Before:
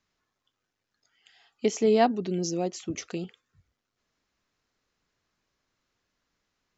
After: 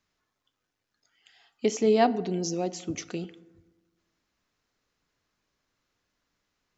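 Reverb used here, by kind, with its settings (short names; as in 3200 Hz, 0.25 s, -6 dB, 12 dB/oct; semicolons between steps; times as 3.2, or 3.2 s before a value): FDN reverb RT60 1.2 s, low-frequency decay 1.2×, high-frequency decay 0.5×, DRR 15.5 dB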